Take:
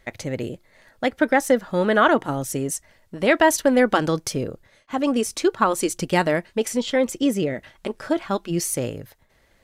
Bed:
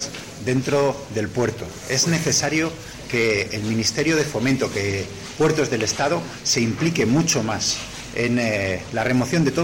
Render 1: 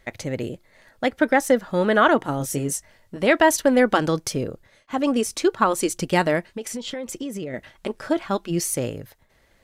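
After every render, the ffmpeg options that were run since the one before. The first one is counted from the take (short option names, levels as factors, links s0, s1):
-filter_complex "[0:a]asettb=1/sr,asplit=3[s0][s1][s2];[s0]atrim=end=2.384[s3];[s1]atrim=start=2.38:end=3.17,asetpts=PTS-STARTPTS,afade=t=in:d=0.004:c=qsin,afade=t=out:st=0.786:d=0.004:c=qsin,asplit=2[s4][s5];[s5]adelay=21,volume=0.501[s6];[s4][s6]amix=inputs=2:normalize=0,atrim=end_sample=34839[s7];[s2]atrim=start=3.166[s8];[s3][s7]acrossfade=d=0.004:c1=hsin:c2=qsin[s9];[s9][s8]acrossfade=d=0.004:c1=qsin:c2=hsin,asettb=1/sr,asplit=3[s10][s11][s12];[s10]atrim=end=6.444[s13];[s11]atrim=start=6.44:end=7.54,asetpts=PTS-STARTPTS,afade=t=in:d=0.004:c=qsin,afade=t=out:st=1.096:d=0.004:c=qsin,acompressor=threshold=0.0447:ratio=8:attack=3.2:release=140:knee=1:detection=peak[s14];[s12]atrim=start=7.536[s15];[s13][s14]acrossfade=d=0.004:c1=hsin:c2=qsin[s16];[s16][s15]acrossfade=d=0.004:c1=qsin:c2=hsin"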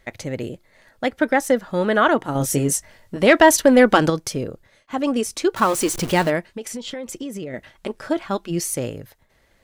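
-filter_complex "[0:a]asettb=1/sr,asplit=3[s0][s1][s2];[s0]atrim=end=2.354[s3];[s1]atrim=start=2.35:end=4.1,asetpts=PTS-STARTPTS,afade=t=in:d=0.004:c=qsin,afade=t=out:st=1.746:d=0.004:c=qsin,acontrast=38[s4];[s2]atrim=start=4.096[s5];[s3][s4]acrossfade=d=0.004:c1=hsin:c2=qsin[s6];[s6][s5]acrossfade=d=0.004:c1=qsin:c2=hsin,asettb=1/sr,asplit=3[s7][s8][s9];[s7]atrim=end=5.564[s10];[s8]atrim=start=5.56:end=6.3,asetpts=PTS-STARTPTS,afade=t=in:d=0.004:c=qsin,afade=t=out:st=0.736:d=0.004:c=qsin,aeval=exprs='val(0)+0.5*0.0531*sgn(val(0))':c=same[s11];[s9]atrim=start=6.296[s12];[s10][s11]acrossfade=d=0.004:c1=hsin:c2=qsin[s13];[s13][s12]acrossfade=d=0.004:c1=qsin:c2=hsin"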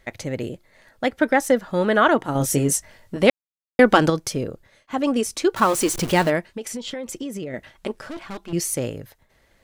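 -filter_complex "[0:a]asettb=1/sr,asplit=3[s0][s1][s2];[s0]atrim=end=8.014[s3];[s1]atrim=start=8.01:end=8.53,asetpts=PTS-STARTPTS,afade=t=in:d=0.004:c=qsin,afade=t=out:st=0.516:d=0.004:c=qsin,aeval=exprs='(tanh(31.6*val(0)+0.5)-tanh(0.5))/31.6':c=same[s4];[s2]atrim=start=8.526[s5];[s3][s4]acrossfade=d=0.004:c1=hsin:c2=qsin[s6];[s6][s5]acrossfade=d=0.004:c1=qsin:c2=hsin,asplit=3[s7][s8][s9];[s7]atrim=end=3.3,asetpts=PTS-STARTPTS,afade=t=out:st=3.296:d=0.004:c=hsin[s10];[s8]atrim=start=3.3:end=3.79,asetpts=PTS-STARTPTS,volume=0[s11];[s9]atrim=start=3.79,asetpts=PTS-STARTPTS,afade=t=in:d=0.004:c=hsin[s12];[s10][s11][s12]concat=n=3:v=0:a=1"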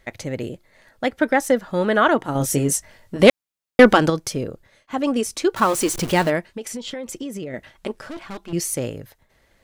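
-filter_complex "[0:a]asettb=1/sr,asplit=3[s0][s1][s2];[s0]atrim=end=3.194[s3];[s1]atrim=start=3.19:end=3.93,asetpts=PTS-STARTPTS,afade=t=in:d=0.004:c=qsin,afade=t=out:st=0.736:d=0.004:c=qsin,acontrast=60[s4];[s2]atrim=start=3.926[s5];[s3][s4]acrossfade=d=0.004:c1=hsin:c2=qsin[s6];[s6][s5]acrossfade=d=0.004:c1=qsin:c2=hsin"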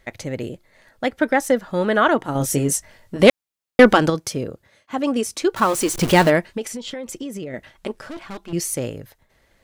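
-filter_complex "[0:a]asettb=1/sr,asplit=3[s0][s1][s2];[s0]atrim=end=4.144[s3];[s1]atrim=start=4.14:end=5.42,asetpts=PTS-STARTPTS,afade=t=in:d=0.004:c=qsin,afade=t=out:st=1.276:d=0.004:c=qsin,highpass=60[s4];[s2]atrim=start=5.416[s5];[s3][s4]acrossfade=d=0.004:c1=hsin:c2=qsin[s6];[s6][s5]acrossfade=d=0.004:c1=qsin:c2=hsin,asettb=1/sr,asplit=3[s7][s8][s9];[s7]atrim=end=6.014[s10];[s8]atrim=start=6.01:end=6.67,asetpts=PTS-STARTPTS,afade=t=in:d=0.004:c=qsin,afade=t=out:st=0.656:d=0.004:c=qsin,acontrast=28[s11];[s9]atrim=start=6.666[s12];[s10][s11]acrossfade=d=0.004:c1=hsin:c2=qsin[s13];[s13][s12]acrossfade=d=0.004:c1=qsin:c2=hsin"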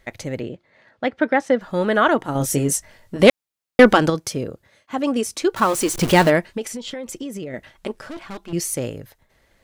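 -filter_complex "[0:a]asettb=1/sr,asplit=3[s0][s1][s2];[s0]atrim=end=0.404[s3];[s1]atrim=start=0.4:end=1.61,asetpts=PTS-STARTPTS,afade=t=in:d=0.004:c=qsin,afade=t=out:st=1.206:d=0.004:c=qsin,highpass=100,lowpass=3700[s4];[s2]atrim=start=1.606[s5];[s3][s4]acrossfade=d=0.004:c1=hsin:c2=qsin[s6];[s6][s5]acrossfade=d=0.004:c1=qsin:c2=hsin"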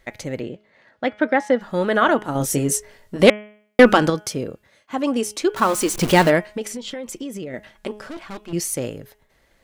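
-af "equalizer=f=97:w=1.9:g=-4.5,bandreject=f=210.2:t=h:w=4,bandreject=f=420.4:t=h:w=4,bandreject=f=630.6:t=h:w=4,bandreject=f=840.8:t=h:w=4,bandreject=f=1051:t=h:w=4,bandreject=f=1261.2:t=h:w=4,bandreject=f=1471.4:t=h:w=4,bandreject=f=1681.6:t=h:w=4,bandreject=f=1891.8:t=h:w=4,bandreject=f=2102:t=h:w=4,bandreject=f=2312.2:t=h:w=4,bandreject=f=2522.4:t=h:w=4,bandreject=f=2732.6:t=h:w=4,bandreject=f=2942.8:t=h:w=4,bandreject=f=3153:t=h:w=4,bandreject=f=3363.2:t=h:w=4"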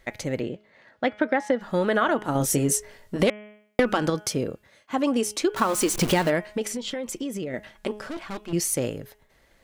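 -af "acompressor=threshold=0.126:ratio=10"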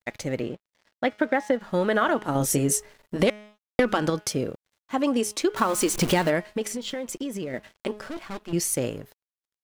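-af "aeval=exprs='sgn(val(0))*max(abs(val(0))-0.00299,0)':c=same"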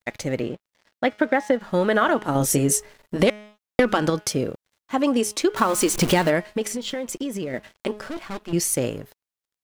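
-af "volume=1.41"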